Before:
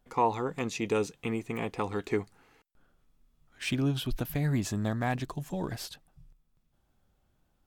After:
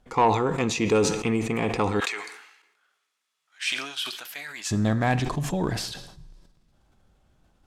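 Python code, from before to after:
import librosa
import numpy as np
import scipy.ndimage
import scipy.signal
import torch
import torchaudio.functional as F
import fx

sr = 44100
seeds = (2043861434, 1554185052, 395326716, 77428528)

y = scipy.signal.sosfilt(scipy.signal.butter(2, 9200.0, 'lowpass', fs=sr, output='sos'), x)
y = fx.rev_double_slope(y, sr, seeds[0], early_s=0.69, late_s=2.1, knee_db=-18, drr_db=13.5)
y = 10.0 ** (-18.5 / 20.0) * np.tanh(y / 10.0 ** (-18.5 / 20.0))
y = fx.highpass(y, sr, hz=1500.0, slope=12, at=(2.0, 4.71))
y = fx.sustainer(y, sr, db_per_s=63.0)
y = y * librosa.db_to_amplitude(7.5)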